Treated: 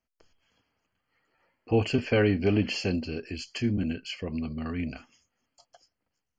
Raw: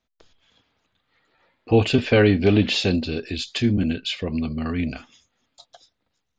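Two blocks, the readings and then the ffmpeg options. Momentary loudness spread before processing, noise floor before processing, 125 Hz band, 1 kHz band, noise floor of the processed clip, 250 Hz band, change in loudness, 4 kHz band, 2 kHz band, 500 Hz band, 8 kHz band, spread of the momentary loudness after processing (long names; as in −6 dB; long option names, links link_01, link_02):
11 LU, −77 dBFS, −7.0 dB, −7.0 dB, −84 dBFS, −7.0 dB, −7.0 dB, −10.5 dB, −7.0 dB, −7.0 dB, can't be measured, 12 LU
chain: -af "asuperstop=centerf=3700:order=8:qfactor=3.8,volume=-7dB"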